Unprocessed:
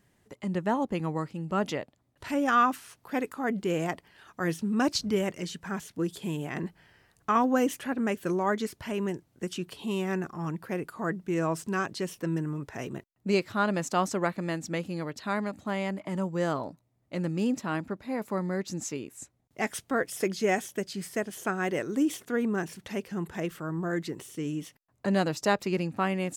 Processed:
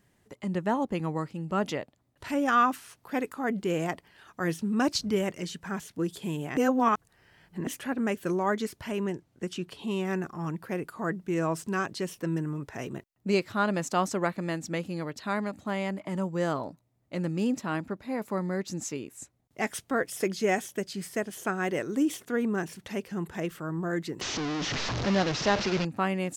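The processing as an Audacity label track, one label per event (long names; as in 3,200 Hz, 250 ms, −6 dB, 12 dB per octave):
6.570000	7.670000	reverse
9.000000	10.050000	high-shelf EQ 10,000 Hz −10.5 dB
24.210000	25.850000	linear delta modulator 32 kbit/s, step −24.5 dBFS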